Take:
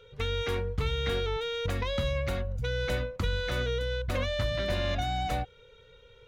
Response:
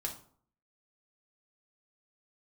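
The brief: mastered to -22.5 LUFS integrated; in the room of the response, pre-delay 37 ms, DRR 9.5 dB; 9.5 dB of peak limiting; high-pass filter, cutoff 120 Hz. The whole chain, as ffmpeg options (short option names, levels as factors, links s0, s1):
-filter_complex "[0:a]highpass=120,alimiter=level_in=1.78:limit=0.0631:level=0:latency=1,volume=0.562,asplit=2[s0][s1];[1:a]atrim=start_sample=2205,adelay=37[s2];[s1][s2]afir=irnorm=-1:irlink=0,volume=0.316[s3];[s0][s3]amix=inputs=2:normalize=0,volume=5.31"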